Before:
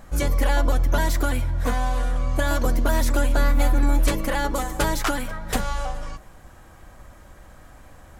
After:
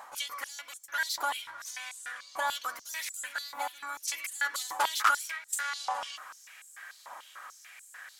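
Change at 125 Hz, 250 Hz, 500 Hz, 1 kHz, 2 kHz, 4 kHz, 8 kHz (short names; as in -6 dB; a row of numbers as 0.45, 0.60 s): under -40 dB, -34.0 dB, -19.0 dB, -4.5 dB, -3.0 dB, -2.0 dB, -2.5 dB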